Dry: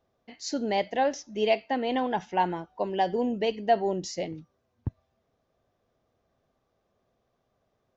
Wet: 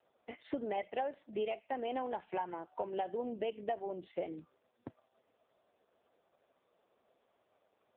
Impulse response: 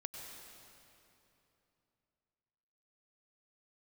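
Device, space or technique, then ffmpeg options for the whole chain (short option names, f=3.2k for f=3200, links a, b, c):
voicemail: -af "highpass=330,lowpass=3.2k,acompressor=threshold=-39dB:ratio=8,volume=5.5dB" -ar 8000 -c:a libopencore_amrnb -b:a 4750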